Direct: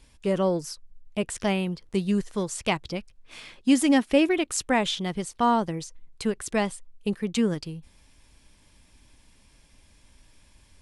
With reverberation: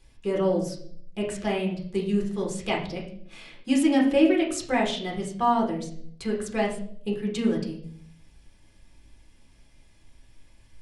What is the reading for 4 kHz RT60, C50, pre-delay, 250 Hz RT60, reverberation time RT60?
0.55 s, 7.5 dB, 5 ms, 0.85 s, 0.65 s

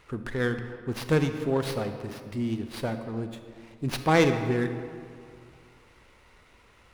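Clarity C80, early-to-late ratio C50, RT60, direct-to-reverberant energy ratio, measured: 9.5 dB, 8.5 dB, 2.2 s, 7.5 dB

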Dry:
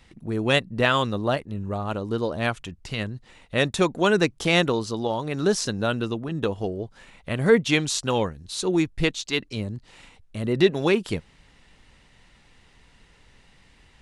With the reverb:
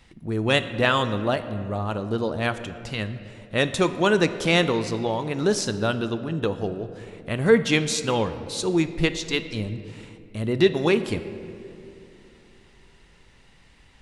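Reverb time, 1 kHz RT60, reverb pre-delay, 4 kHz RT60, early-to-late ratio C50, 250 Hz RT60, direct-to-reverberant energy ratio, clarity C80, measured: 2.7 s, 2.2 s, 12 ms, 1.4 s, 12.0 dB, 3.2 s, 10.5 dB, 12.5 dB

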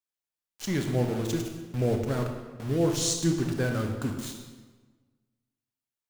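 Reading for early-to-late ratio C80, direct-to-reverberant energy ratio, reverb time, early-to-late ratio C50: 7.0 dB, 3.5 dB, 1.3 s, 5.0 dB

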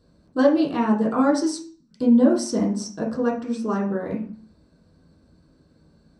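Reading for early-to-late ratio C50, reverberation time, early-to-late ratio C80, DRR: 8.0 dB, 0.45 s, 12.5 dB, -4.5 dB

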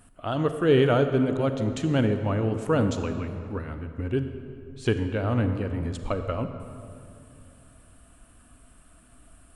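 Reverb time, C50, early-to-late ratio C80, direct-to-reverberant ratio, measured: 2.5 s, 8.5 dB, 9.0 dB, 8.0 dB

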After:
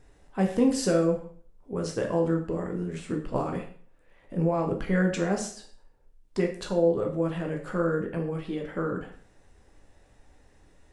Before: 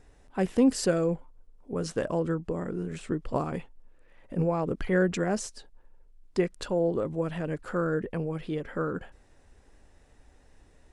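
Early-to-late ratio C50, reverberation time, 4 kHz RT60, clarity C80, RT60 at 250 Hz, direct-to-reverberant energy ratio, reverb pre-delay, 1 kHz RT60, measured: 8.5 dB, 0.50 s, 0.45 s, 12.0 dB, 0.50 s, 1.5 dB, 5 ms, 0.50 s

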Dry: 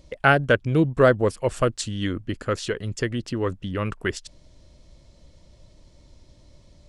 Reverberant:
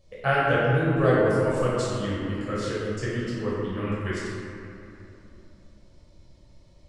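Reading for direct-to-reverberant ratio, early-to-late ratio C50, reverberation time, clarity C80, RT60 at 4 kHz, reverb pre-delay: -9.0 dB, -3.5 dB, 2.8 s, -1.0 dB, 1.6 s, 9 ms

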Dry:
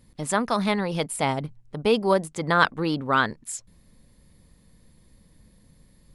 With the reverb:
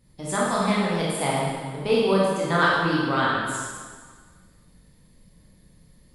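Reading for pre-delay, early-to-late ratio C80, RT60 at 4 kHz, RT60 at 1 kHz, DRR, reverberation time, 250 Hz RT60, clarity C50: 8 ms, 0.5 dB, 1.5 s, 1.6 s, -6.5 dB, 1.6 s, 1.6 s, -1.5 dB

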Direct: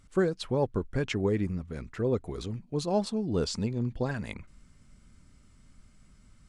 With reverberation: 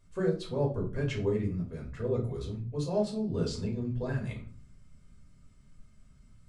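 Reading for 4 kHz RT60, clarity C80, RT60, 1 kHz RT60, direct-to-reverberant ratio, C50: 0.30 s, 15.0 dB, 0.45 s, 0.40 s, -3.0 dB, 9.0 dB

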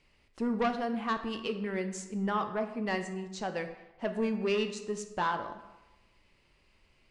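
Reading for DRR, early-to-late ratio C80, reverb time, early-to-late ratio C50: 7.0 dB, 11.5 dB, 1.1 s, 9.5 dB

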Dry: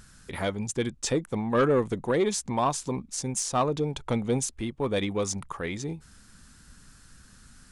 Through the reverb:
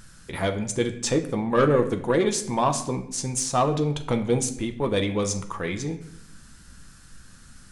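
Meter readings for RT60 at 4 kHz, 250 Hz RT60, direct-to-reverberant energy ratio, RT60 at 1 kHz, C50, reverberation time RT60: 0.55 s, 0.90 s, 6.0 dB, 0.65 s, 11.5 dB, 0.70 s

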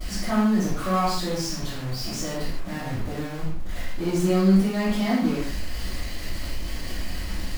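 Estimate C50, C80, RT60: -0.5 dB, 3.5 dB, no single decay rate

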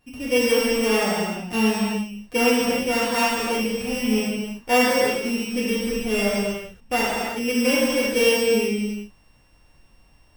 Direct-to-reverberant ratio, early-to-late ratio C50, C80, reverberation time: -9.0 dB, -3.0 dB, -1.0 dB, no single decay rate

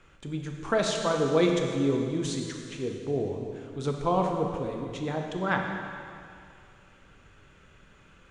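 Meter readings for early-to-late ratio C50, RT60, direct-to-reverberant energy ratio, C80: 3.0 dB, 2.4 s, 1.5 dB, 4.0 dB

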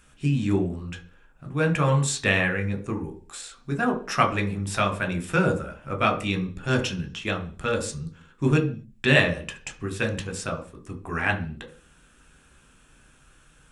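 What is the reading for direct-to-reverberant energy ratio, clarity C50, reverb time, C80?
3.5 dB, 13.0 dB, no single decay rate, 17.5 dB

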